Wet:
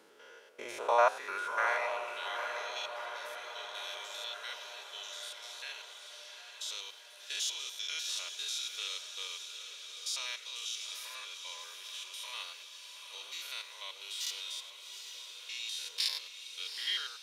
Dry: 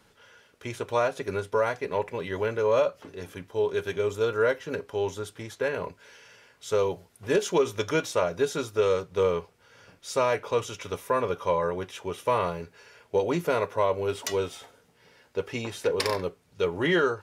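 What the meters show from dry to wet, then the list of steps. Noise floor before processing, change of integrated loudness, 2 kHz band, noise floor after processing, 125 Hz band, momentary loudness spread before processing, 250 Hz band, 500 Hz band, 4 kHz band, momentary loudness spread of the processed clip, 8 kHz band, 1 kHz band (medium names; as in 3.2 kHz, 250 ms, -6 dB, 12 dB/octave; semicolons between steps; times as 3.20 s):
-62 dBFS, -9.0 dB, -5.0 dB, -53 dBFS, under -40 dB, 12 LU, under -25 dB, -16.5 dB, +3.5 dB, 13 LU, +0.5 dB, -6.5 dB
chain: spectrogram pixelated in time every 100 ms; high-pass sweep 360 Hz -> 3.7 kHz, 0.24–2.38 s; echo that smears into a reverb 802 ms, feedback 60%, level -7.5 dB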